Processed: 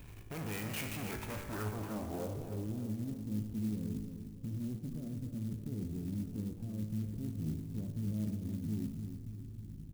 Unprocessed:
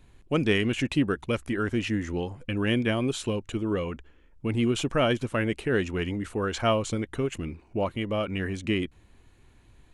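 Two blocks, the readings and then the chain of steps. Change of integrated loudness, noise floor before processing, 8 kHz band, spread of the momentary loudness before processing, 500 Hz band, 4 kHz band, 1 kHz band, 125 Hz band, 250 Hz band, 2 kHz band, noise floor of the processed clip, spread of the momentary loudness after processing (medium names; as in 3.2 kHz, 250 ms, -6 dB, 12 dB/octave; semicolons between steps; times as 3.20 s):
-12.0 dB, -58 dBFS, -9.5 dB, 7 LU, -19.0 dB, -18.5 dB, -16.0 dB, -7.0 dB, -10.5 dB, -18.0 dB, -49 dBFS, 6 LU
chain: graphic EQ 125/2000/4000/8000 Hz +7/-6/+7/+7 dB; in parallel at +1 dB: compressor with a negative ratio -30 dBFS; on the sum: peak limiter -17 dBFS, peak gain reduction 8.5 dB; valve stage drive 37 dB, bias 0.55; feedback comb 53 Hz, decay 1.1 s, harmonics all, mix 80%; low-pass sweep 2.4 kHz -> 230 Hz, 1.22–2.94 s; feedback delay 301 ms, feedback 46%, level -8.5 dB; sampling jitter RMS 0.056 ms; trim +7 dB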